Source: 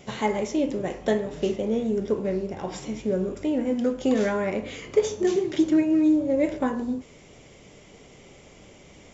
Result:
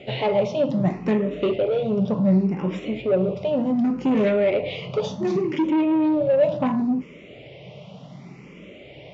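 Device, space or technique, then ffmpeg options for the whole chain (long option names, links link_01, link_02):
barber-pole phaser into a guitar amplifier: -filter_complex "[0:a]asplit=2[link_01][link_02];[link_02]afreqshift=0.68[link_03];[link_01][link_03]amix=inputs=2:normalize=1,asoftclip=type=tanh:threshold=-25dB,highpass=80,equalizer=frequency=84:width_type=q:width=4:gain=-7,equalizer=frequency=130:width_type=q:width=4:gain=10,equalizer=frequency=180:width_type=q:width=4:gain=10,equalizer=frequency=610:width_type=q:width=4:gain=7,equalizer=frequency=1600:width_type=q:width=4:gain=-8,equalizer=frequency=2600:width_type=q:width=4:gain=5,lowpass=frequency=4300:width=0.5412,lowpass=frequency=4300:width=1.3066,volume=7dB"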